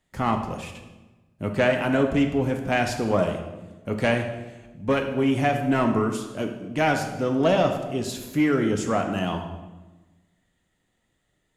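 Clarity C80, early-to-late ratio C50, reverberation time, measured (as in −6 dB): 9.0 dB, 7.0 dB, 1.2 s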